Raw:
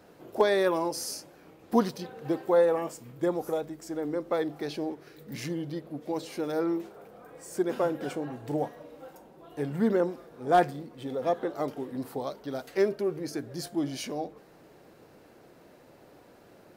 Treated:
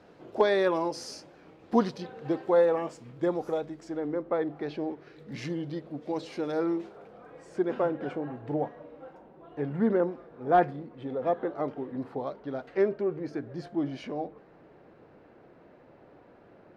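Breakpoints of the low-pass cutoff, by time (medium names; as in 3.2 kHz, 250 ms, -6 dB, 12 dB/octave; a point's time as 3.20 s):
3.79 s 4.7 kHz
4.30 s 1.8 kHz
5.50 s 4.9 kHz
6.88 s 4.9 kHz
7.99 s 2.2 kHz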